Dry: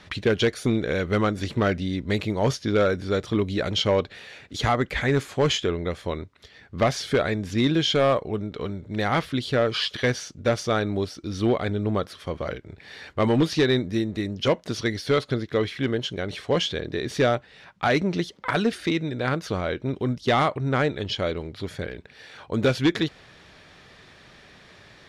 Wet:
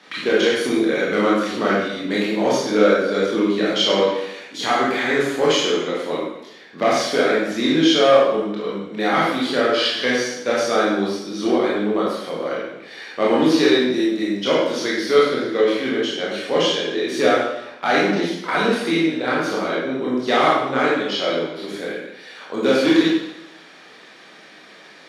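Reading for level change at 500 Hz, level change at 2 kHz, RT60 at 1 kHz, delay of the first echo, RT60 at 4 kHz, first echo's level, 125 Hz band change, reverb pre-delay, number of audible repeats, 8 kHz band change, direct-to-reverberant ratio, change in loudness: +6.5 dB, +7.0 dB, 0.90 s, no echo, 0.80 s, no echo, -7.5 dB, 20 ms, no echo, +6.0 dB, -6.5 dB, +5.5 dB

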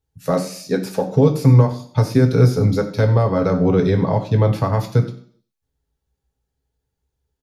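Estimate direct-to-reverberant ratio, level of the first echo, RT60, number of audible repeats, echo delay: 2.5 dB, -16.5 dB, 0.55 s, 1, 94 ms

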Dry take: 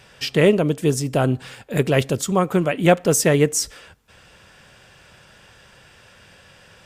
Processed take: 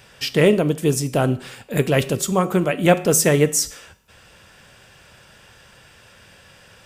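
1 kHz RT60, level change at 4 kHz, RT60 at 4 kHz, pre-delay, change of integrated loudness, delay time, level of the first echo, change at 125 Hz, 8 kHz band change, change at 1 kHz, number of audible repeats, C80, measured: 0.55 s, +1.0 dB, 0.55 s, 5 ms, +0.5 dB, no echo, no echo, 0.0 dB, +2.5 dB, 0.0 dB, no echo, 20.0 dB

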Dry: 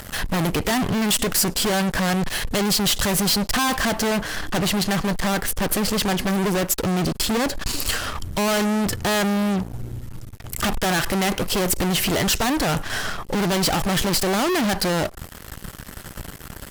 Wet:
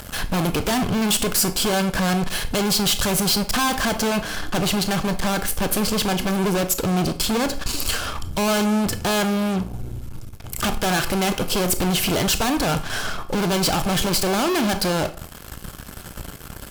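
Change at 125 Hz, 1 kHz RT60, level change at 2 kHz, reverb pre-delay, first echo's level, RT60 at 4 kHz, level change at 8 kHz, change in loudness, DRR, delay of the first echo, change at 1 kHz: +0.5 dB, 0.45 s, -1.0 dB, 23 ms, no echo, 0.35 s, +0.5 dB, 0.0 dB, 10.5 dB, no echo, +0.5 dB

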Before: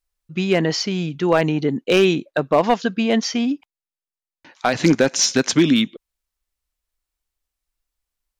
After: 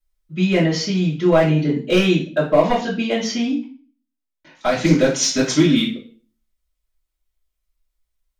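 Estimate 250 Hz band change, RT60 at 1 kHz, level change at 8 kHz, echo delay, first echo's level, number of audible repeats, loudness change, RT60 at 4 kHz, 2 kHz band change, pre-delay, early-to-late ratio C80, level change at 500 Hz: +1.0 dB, 0.35 s, -1.0 dB, no echo, no echo, no echo, +0.5 dB, 0.40 s, -0.5 dB, 3 ms, 12.5 dB, +1.0 dB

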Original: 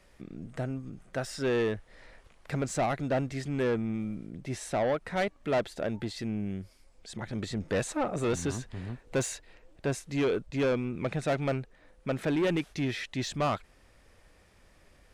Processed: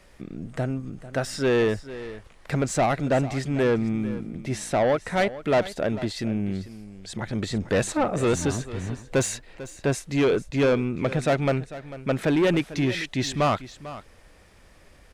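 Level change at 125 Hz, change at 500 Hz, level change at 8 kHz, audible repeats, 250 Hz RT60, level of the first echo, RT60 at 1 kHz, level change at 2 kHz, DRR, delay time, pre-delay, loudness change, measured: +6.5 dB, +6.5 dB, +6.5 dB, 1, no reverb, -15.5 dB, no reverb, +6.5 dB, no reverb, 446 ms, no reverb, +6.5 dB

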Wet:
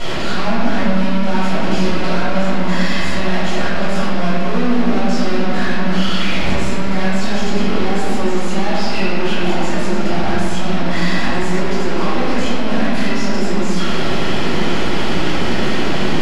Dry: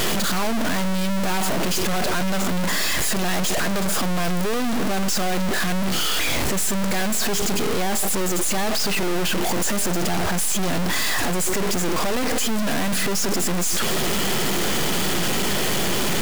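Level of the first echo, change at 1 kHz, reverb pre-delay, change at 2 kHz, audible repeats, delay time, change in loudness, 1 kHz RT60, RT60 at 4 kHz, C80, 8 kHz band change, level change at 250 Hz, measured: no echo, +4.5 dB, 3 ms, +3.5 dB, no echo, no echo, +3.0 dB, 2.0 s, 1.3 s, -1.0 dB, -10.5 dB, +6.5 dB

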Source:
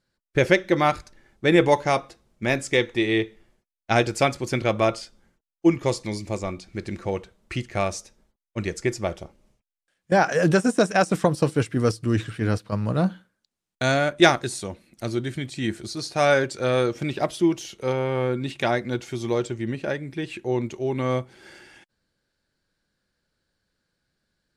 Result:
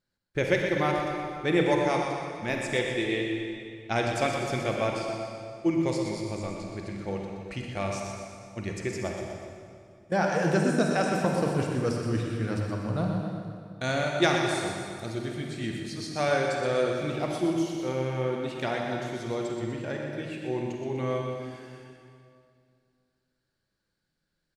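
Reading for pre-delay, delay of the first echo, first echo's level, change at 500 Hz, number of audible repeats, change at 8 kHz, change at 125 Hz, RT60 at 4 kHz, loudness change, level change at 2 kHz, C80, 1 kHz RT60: 37 ms, 123 ms, -8.0 dB, -5.0 dB, 2, -5.5 dB, -4.5 dB, 1.9 s, -5.5 dB, -5.0 dB, 1.5 dB, 2.2 s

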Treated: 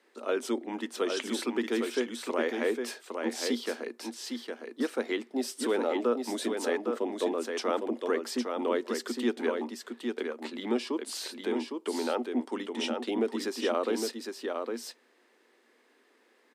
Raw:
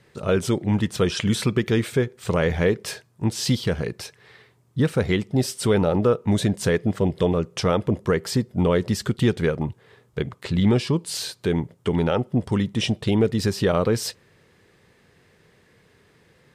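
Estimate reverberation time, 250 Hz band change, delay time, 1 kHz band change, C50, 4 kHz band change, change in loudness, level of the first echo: no reverb, -9.0 dB, 809 ms, -4.5 dB, no reverb, -7.0 dB, -9.0 dB, -5.0 dB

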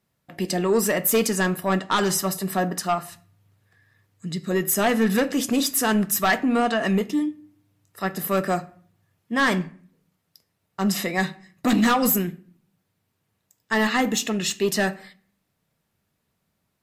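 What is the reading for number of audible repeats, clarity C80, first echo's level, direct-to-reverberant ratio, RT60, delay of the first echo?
no echo, 23.0 dB, no echo, 11.0 dB, 0.50 s, no echo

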